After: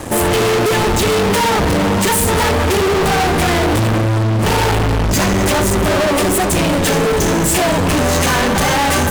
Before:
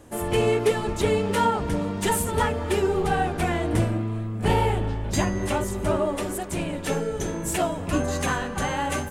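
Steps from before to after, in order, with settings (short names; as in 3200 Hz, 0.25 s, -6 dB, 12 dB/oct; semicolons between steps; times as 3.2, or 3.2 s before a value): notch 1400 Hz; fuzz box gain 41 dB, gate -51 dBFS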